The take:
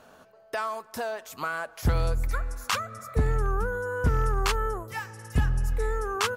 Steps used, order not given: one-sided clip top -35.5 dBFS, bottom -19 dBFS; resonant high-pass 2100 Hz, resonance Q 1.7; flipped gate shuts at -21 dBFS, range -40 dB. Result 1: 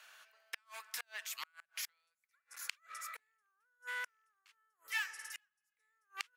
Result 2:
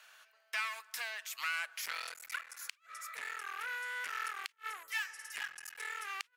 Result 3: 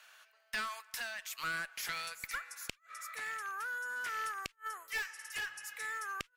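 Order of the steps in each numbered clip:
flipped gate > one-sided clip > resonant high-pass; one-sided clip > resonant high-pass > flipped gate; resonant high-pass > flipped gate > one-sided clip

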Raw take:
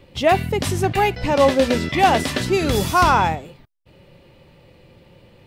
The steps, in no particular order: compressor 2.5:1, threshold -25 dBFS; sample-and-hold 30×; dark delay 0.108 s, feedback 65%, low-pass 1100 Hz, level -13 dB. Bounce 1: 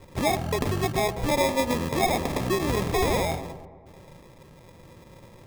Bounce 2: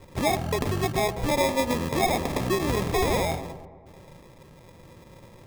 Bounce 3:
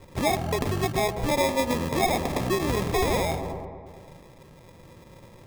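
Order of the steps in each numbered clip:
compressor > sample-and-hold > dark delay; sample-and-hold > compressor > dark delay; sample-and-hold > dark delay > compressor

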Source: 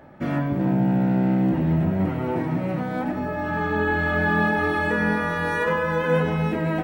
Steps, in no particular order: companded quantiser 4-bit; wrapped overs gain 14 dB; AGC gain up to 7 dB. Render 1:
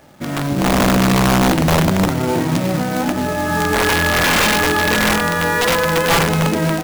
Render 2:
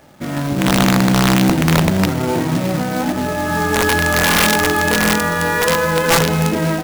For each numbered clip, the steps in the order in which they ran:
companded quantiser > wrapped overs > AGC; wrapped overs > companded quantiser > AGC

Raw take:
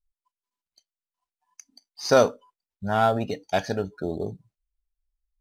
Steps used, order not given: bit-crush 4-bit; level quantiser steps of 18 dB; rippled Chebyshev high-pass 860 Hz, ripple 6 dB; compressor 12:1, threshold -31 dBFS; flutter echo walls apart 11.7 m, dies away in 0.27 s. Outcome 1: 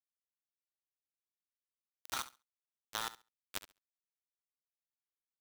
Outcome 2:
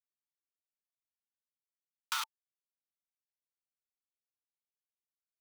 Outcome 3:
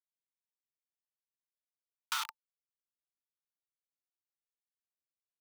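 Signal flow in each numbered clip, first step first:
rippled Chebyshev high-pass > bit-crush > level quantiser > compressor > flutter echo; flutter echo > level quantiser > bit-crush > rippled Chebyshev high-pass > compressor; level quantiser > flutter echo > bit-crush > rippled Chebyshev high-pass > compressor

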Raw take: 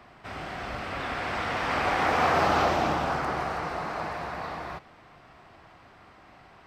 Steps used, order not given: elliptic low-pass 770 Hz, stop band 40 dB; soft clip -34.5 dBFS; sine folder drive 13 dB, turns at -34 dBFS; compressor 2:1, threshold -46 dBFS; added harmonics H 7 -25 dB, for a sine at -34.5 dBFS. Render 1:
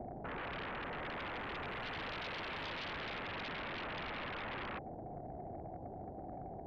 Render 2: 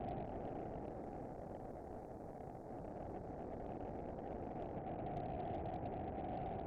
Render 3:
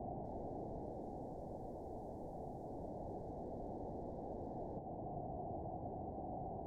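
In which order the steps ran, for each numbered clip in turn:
added harmonics > soft clip > elliptic low-pass > sine folder > compressor; compressor > sine folder > soft clip > elliptic low-pass > added harmonics; compressor > added harmonics > sine folder > soft clip > elliptic low-pass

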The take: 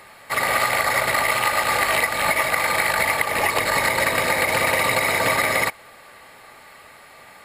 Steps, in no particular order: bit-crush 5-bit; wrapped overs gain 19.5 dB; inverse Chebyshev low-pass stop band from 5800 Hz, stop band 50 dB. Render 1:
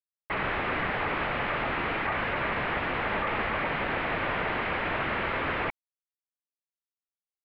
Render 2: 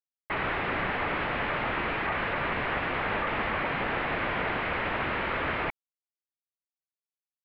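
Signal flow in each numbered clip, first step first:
wrapped overs > bit-crush > inverse Chebyshev low-pass; bit-crush > wrapped overs > inverse Chebyshev low-pass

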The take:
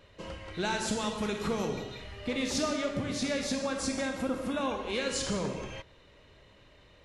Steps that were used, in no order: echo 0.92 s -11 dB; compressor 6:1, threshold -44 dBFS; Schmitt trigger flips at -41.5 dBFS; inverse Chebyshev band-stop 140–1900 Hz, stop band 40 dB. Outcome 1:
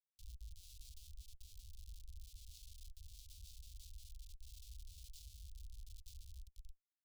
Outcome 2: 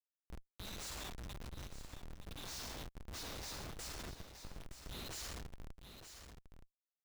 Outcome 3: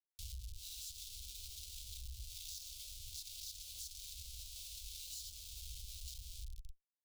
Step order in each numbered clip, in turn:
echo > compressor > Schmitt trigger > inverse Chebyshev band-stop; inverse Chebyshev band-stop > Schmitt trigger > echo > compressor; echo > Schmitt trigger > inverse Chebyshev band-stop > compressor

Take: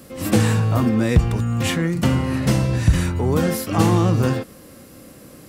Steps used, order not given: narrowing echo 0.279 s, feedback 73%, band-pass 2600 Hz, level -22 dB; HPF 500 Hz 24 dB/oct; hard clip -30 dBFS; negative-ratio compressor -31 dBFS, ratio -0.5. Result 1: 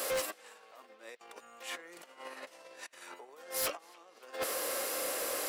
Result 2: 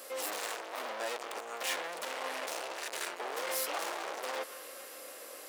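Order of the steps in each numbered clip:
negative-ratio compressor > HPF > hard clip > narrowing echo; narrowing echo > hard clip > negative-ratio compressor > HPF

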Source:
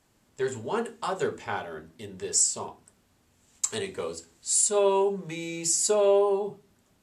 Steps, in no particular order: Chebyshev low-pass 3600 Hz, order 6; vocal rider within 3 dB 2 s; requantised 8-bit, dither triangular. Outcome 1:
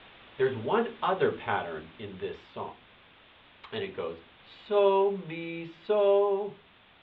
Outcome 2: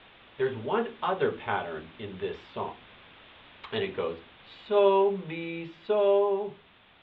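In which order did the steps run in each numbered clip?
requantised > vocal rider > Chebyshev low-pass; requantised > Chebyshev low-pass > vocal rider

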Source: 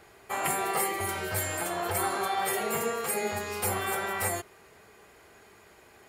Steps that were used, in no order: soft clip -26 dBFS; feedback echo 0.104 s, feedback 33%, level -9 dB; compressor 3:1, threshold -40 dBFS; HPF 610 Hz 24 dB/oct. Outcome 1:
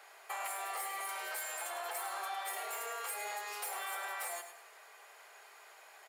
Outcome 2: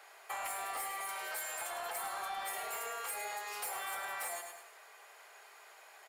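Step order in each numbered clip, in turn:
soft clip > HPF > compressor > feedback echo; HPF > soft clip > feedback echo > compressor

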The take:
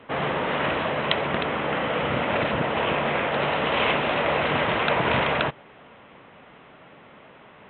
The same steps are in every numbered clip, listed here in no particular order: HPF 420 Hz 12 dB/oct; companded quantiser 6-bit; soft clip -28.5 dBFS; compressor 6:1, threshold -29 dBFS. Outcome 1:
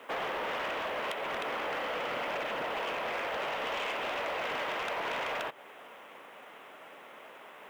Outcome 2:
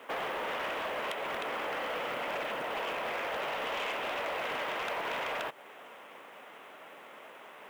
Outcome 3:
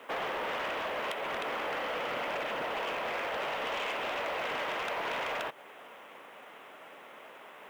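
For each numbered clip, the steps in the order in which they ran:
HPF > companded quantiser > compressor > soft clip; compressor > companded quantiser > HPF > soft clip; HPF > compressor > companded quantiser > soft clip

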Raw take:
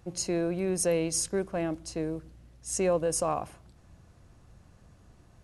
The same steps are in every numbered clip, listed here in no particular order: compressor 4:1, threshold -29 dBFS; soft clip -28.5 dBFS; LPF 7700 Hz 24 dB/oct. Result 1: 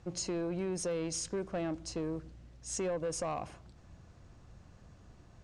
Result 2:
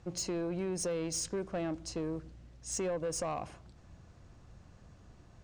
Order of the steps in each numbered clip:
compressor > soft clip > LPF; LPF > compressor > soft clip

